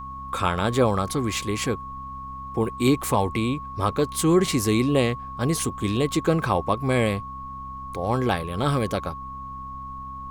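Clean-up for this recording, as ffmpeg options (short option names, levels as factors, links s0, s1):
-af "bandreject=f=65.8:t=h:w=4,bandreject=f=131.6:t=h:w=4,bandreject=f=197.4:t=h:w=4,bandreject=f=263.2:t=h:w=4,bandreject=f=1100:w=30,agate=range=0.0891:threshold=0.0398"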